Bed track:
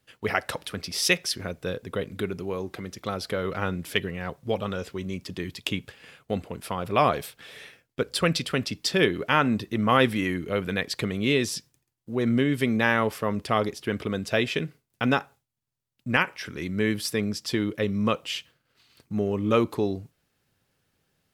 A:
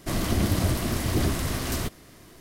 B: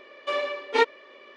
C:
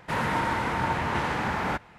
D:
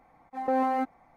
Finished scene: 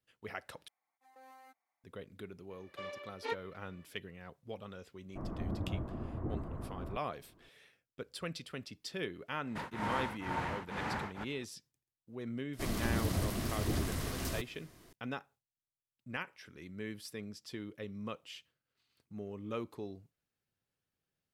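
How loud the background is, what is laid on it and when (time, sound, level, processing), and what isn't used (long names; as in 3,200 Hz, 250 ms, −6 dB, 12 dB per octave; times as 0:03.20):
bed track −17.5 dB
0:00.68: overwrite with D −11.5 dB + first difference
0:02.50: mix in B −17 dB
0:05.09: mix in A −13.5 dB + low-pass filter 1,200 Hz 24 dB per octave
0:09.47: mix in C −8.5 dB + tremolo along a rectified sine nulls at 2.1 Hz
0:12.53: mix in A −9.5 dB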